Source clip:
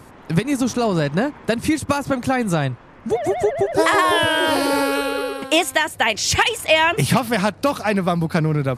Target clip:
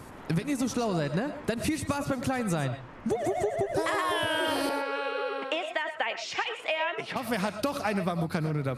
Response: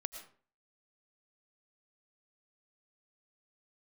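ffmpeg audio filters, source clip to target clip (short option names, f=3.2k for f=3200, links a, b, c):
-filter_complex "[0:a]acompressor=threshold=-23dB:ratio=10,asettb=1/sr,asplit=3[a][b][c];[a]atrim=end=4.694[d];[b]atrim=start=4.69:end=7.16,asetpts=PTS-STARTPTS,afade=t=in:d=0.004:c=qsin,afade=t=out:st=2.466:d=0.004:c=qsin,highpass=430,lowpass=3k[e];[c]atrim=start=7.156[f];[d][e]acrossfade=d=0.004:c1=hsin:c2=qsin[g];[g][f]acrossfade=d=0.004:c1=qsin:c2=hsin[h];[1:a]atrim=start_sample=2205,afade=t=out:st=0.18:d=0.01,atrim=end_sample=8379[i];[h][i]afir=irnorm=-1:irlink=0"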